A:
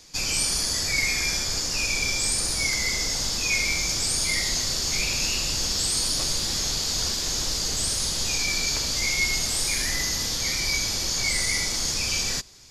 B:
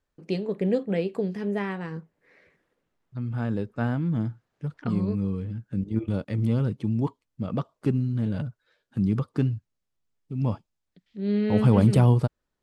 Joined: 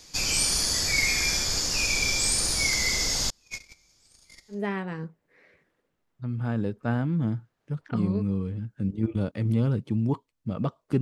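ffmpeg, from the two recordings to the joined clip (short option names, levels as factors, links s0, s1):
-filter_complex "[0:a]asettb=1/sr,asplit=3[s0][s1][s2];[s0]atrim=end=3.304[s3];[s1]atrim=start=3.3:end=4.66,asetpts=PTS-STARTPTS,afade=t=in:d=0.004:c=qsin,afade=t=out:st=1.356:d=0.004:c=qsin,agate=range=0.0141:threshold=0.0891:ratio=16:release=100:detection=peak[s4];[s2]atrim=start=4.656[s5];[s3][s4]acrossfade=d=0.004:c1=hsin:c2=qsin[s6];[s6][s5]acrossfade=d=0.004:c1=qsin:c2=hsin,apad=whole_dur=11.01,atrim=end=11.01,atrim=end=4.66,asetpts=PTS-STARTPTS[s7];[1:a]atrim=start=1.41:end=7.94,asetpts=PTS-STARTPTS[s8];[s7][s8]acrossfade=d=0.18:c1=tri:c2=tri"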